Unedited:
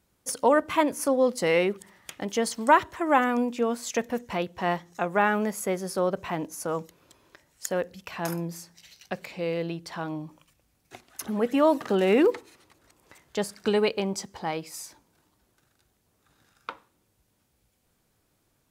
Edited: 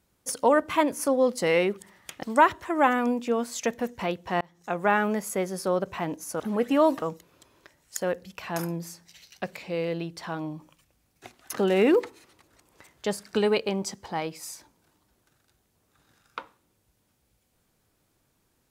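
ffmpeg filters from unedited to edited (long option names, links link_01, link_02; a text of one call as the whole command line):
ffmpeg -i in.wav -filter_complex "[0:a]asplit=6[link_01][link_02][link_03][link_04][link_05][link_06];[link_01]atrim=end=2.232[link_07];[link_02]atrim=start=2.538:end=4.72,asetpts=PTS-STARTPTS,afade=type=out:start_time=2.178:duration=0.004:curve=hsin[link_08];[link_03]atrim=start=4.72:end=6.712,asetpts=PTS-STARTPTS,afade=type=in:duration=0.37[link_09];[link_04]atrim=start=11.228:end=11.852[link_10];[link_05]atrim=start=6.708:end=11.232[link_11];[link_06]atrim=start=11.848[link_12];[link_08][link_09]concat=n=2:v=0:a=1[link_13];[link_07][link_13]acrossfade=duration=0.004:curve1=hsin:curve2=hsin[link_14];[link_14][link_10]acrossfade=duration=0.004:curve1=hsin:curve2=hsin[link_15];[link_15][link_11]acrossfade=duration=0.004:curve1=hsin:curve2=hsin[link_16];[link_16][link_12]acrossfade=duration=0.004:curve1=hsin:curve2=hsin" out.wav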